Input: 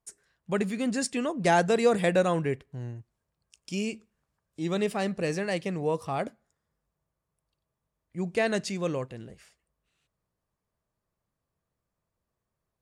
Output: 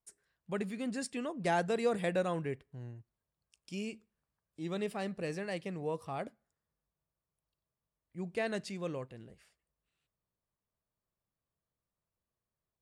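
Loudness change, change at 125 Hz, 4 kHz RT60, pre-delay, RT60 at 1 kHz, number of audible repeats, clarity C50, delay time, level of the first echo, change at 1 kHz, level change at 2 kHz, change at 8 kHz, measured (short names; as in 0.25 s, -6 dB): -8.5 dB, -8.5 dB, none, none, none, none, none, none, none, -8.5 dB, -8.5 dB, -11.0 dB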